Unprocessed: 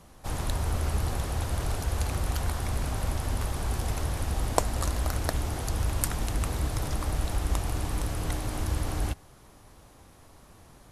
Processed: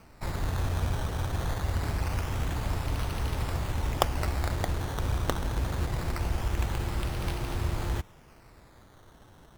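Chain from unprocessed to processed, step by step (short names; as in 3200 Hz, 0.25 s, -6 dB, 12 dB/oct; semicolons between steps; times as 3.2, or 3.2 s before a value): decimation with a swept rate 14×, swing 100% 0.21 Hz; wide varispeed 1.14×; gain -1 dB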